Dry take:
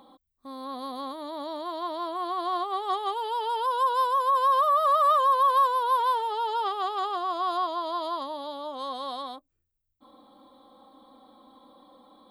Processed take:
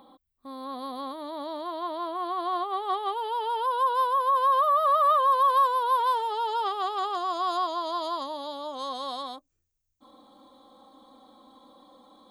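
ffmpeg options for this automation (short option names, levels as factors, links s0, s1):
-af "asetnsamples=n=441:p=0,asendcmd='1.67 equalizer g -14;5.28 equalizer g -3;6.07 equalizer g 3.5;7.15 equalizer g 12',equalizer=f=6400:t=o:w=0.64:g=-7.5"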